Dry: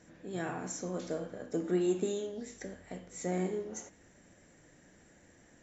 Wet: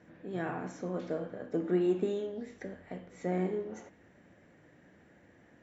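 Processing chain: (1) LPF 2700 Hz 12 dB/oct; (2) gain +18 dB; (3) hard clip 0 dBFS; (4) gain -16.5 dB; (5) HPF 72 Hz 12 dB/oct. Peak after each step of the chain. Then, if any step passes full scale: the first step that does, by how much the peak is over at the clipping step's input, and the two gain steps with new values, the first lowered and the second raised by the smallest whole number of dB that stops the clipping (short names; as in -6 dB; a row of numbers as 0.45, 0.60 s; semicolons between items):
-20.0, -2.0, -2.0, -18.5, -18.5 dBFS; no overload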